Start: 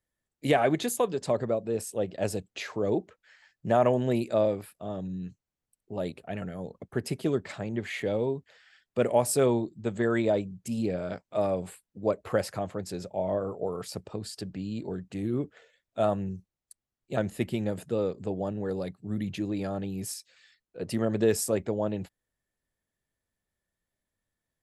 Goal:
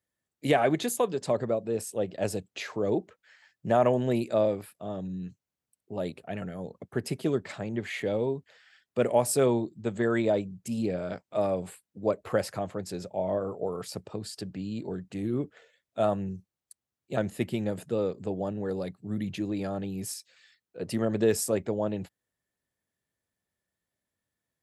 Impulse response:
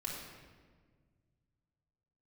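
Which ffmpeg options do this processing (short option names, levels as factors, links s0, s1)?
-af "highpass=80"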